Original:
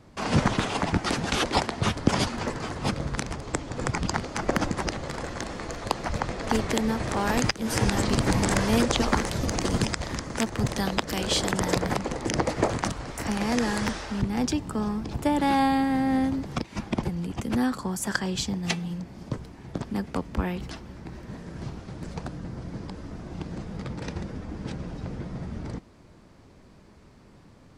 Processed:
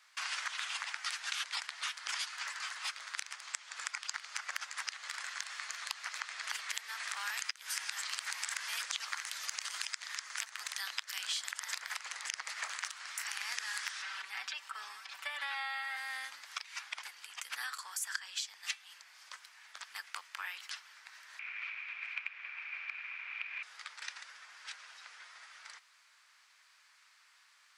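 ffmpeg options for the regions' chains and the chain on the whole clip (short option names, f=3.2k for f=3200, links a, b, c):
-filter_complex "[0:a]asettb=1/sr,asplit=3[a][b][c];[a]atrim=end=14.024[d];[b]atrim=start=14.02:end=15.97,asetpts=PTS-STARTPTS,afade=t=in:d=0.004:c=qsin,afade=t=out:st=1.946:d=0.004:c=qsin,acrossover=split=3800[e][f];[f]acompressor=threshold=-56dB:ratio=4:attack=1:release=60[g];[e][g]amix=inputs=2:normalize=0,aecho=1:1:5.2:0.77,atrim=end_sample=85995[h];[c]atrim=start=15.966[i];[d][h]acrossfade=d=0.004:c1=hsin:c2=qsin[j];[j][i]acrossfade=d=0.004:c1=qsin:c2=hsin,asettb=1/sr,asplit=3[k][l][m];[k]atrim=end=21.394[n];[l]atrim=start=21.39:end=23.63,asetpts=PTS-STARTPTS,afade=t=in:d=0.004:c=qsin,afade=t=out:st=2.236:d=0.004:c=qsin,lowshelf=f=61:g=-11,aeval=exprs='abs(val(0))':c=same,lowpass=f=2.4k:t=q:w=14[o];[m]atrim=start=23.626[p];[n][o]acrossfade=d=0.004:c1=hsin:c2=qsin[q];[q][p]acrossfade=d=0.004:c1=qsin:c2=hsin,highpass=f=1.4k:w=0.5412,highpass=f=1.4k:w=1.3066,acompressor=threshold=-37dB:ratio=4,volume=1dB"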